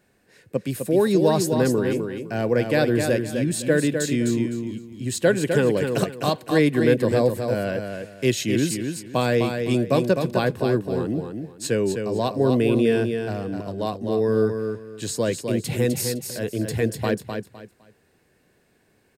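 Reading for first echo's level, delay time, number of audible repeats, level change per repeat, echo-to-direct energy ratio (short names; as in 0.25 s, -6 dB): -6.0 dB, 0.255 s, 3, -12.0 dB, -5.5 dB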